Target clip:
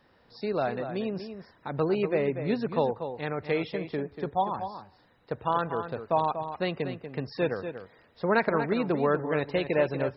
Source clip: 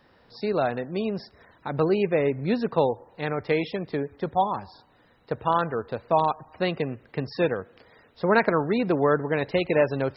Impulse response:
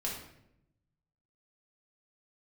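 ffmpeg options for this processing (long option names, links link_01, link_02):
-filter_complex "[0:a]asplit=2[link_01][link_02];[link_02]adelay=239.1,volume=-9dB,highshelf=frequency=4000:gain=-5.38[link_03];[link_01][link_03]amix=inputs=2:normalize=0,volume=-4dB"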